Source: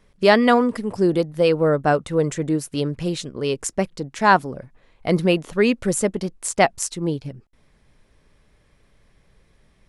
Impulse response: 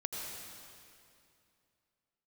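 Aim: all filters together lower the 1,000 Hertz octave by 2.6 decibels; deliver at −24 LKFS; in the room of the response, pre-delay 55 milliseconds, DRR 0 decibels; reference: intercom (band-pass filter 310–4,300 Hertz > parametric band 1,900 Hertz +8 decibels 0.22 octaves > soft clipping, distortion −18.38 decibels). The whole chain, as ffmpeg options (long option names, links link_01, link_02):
-filter_complex "[0:a]equalizer=frequency=1000:width_type=o:gain=-3.5,asplit=2[link_01][link_02];[1:a]atrim=start_sample=2205,adelay=55[link_03];[link_02][link_03]afir=irnorm=-1:irlink=0,volume=-2dB[link_04];[link_01][link_04]amix=inputs=2:normalize=0,highpass=310,lowpass=4300,equalizer=frequency=1900:width_type=o:width=0.22:gain=8,asoftclip=threshold=-7dB,volume=-3.5dB"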